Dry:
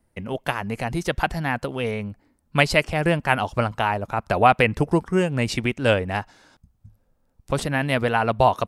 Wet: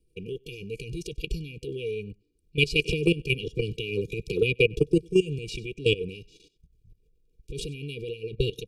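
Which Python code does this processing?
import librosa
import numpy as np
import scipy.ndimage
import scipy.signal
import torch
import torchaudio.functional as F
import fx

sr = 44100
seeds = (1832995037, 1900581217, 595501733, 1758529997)

y = fx.level_steps(x, sr, step_db=18)
y = fx.transient(y, sr, attack_db=-3, sustain_db=6)
y = fx.high_shelf(y, sr, hz=6200.0, db=-10.0)
y = y + 10.0 ** (-22.5 / 20.0) * np.pad(y, (int(97 * sr / 1000.0), 0))[:len(y)]
y = fx.transient(y, sr, attack_db=1, sustain_db=-8)
y = fx.brickwall_bandstop(y, sr, low_hz=490.0, high_hz=2300.0)
y = fx.peak_eq(y, sr, hz=89.0, db=-13.5, octaves=0.61)
y = y + 0.81 * np.pad(y, (int(2.1 * sr / 1000.0), 0))[:len(y)]
y = fx.band_squash(y, sr, depth_pct=70, at=(2.85, 5.39))
y = y * 10.0 ** (4.0 / 20.0)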